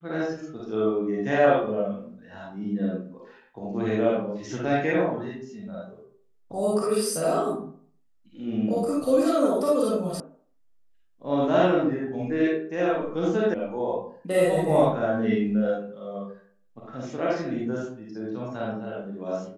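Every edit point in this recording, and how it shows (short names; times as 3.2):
10.2 sound cut off
13.54 sound cut off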